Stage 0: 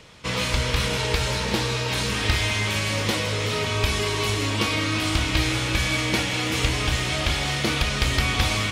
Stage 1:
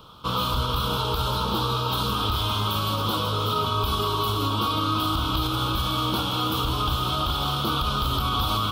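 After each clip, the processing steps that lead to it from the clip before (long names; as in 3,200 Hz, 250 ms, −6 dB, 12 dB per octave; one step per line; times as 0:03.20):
drawn EQ curve 320 Hz 0 dB, 630 Hz −3 dB, 1,300 Hz +11 dB, 1,900 Hz −28 dB, 3,300 Hz +4 dB, 6,900 Hz −14 dB, 9,700 Hz −5 dB, 15,000 Hz +15 dB
brickwall limiter −15 dBFS, peak gain reduction 7 dB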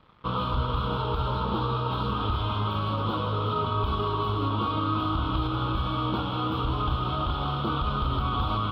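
dead-zone distortion −48.5 dBFS
high-frequency loss of the air 430 metres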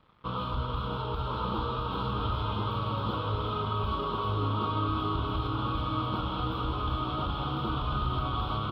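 single-tap delay 1,046 ms −3.5 dB
level −5 dB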